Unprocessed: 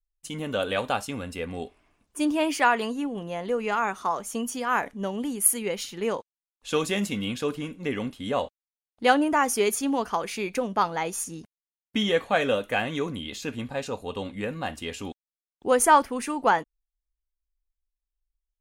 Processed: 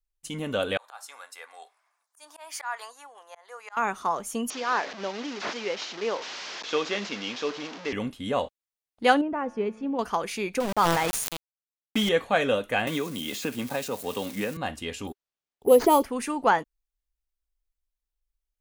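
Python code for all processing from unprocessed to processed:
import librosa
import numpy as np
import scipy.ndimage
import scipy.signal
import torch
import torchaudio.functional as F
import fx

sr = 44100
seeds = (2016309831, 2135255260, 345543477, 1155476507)

y = fx.chain(x, sr, fx.highpass(hz=820.0, slope=24),
    fx.peak_eq(hz=2800.0, db=-13.0, octaves=0.6),
    fx.auto_swell(attack_ms=222.0), at=(0.77, 3.77))
y = fx.chain(y, sr, fx.delta_mod(bps=32000, step_db=-30.5),
    fx.highpass(hz=350.0, slope=12), at=(4.5, 7.93))
y = fx.chain(y, sr, fx.spacing_loss(db_at_10k=40),
    fx.comb_fb(f0_hz=110.0, decay_s=1.6, harmonics='all', damping=0.0, mix_pct=50),
    fx.small_body(hz=(200.0, 500.0, 2600.0), ring_ms=25, db=7), at=(9.21, 9.99))
y = fx.chain(y, sr, fx.low_shelf(hz=77.0, db=5.0),
    fx.sample_gate(floor_db=-30.0),
    fx.sustainer(db_per_s=27.0), at=(10.6, 12.09))
y = fx.chain(y, sr, fx.crossing_spikes(level_db=-32.5),
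    fx.highpass(hz=150.0, slope=12),
    fx.band_squash(depth_pct=100), at=(12.87, 14.57))
y = fx.chain(y, sr, fx.peak_eq(hz=400.0, db=15.0, octaves=0.56),
    fx.env_phaser(low_hz=310.0, high_hz=1600.0, full_db=-14.5),
    fx.resample_bad(factor=4, down='none', up='hold'), at=(15.07, 16.04))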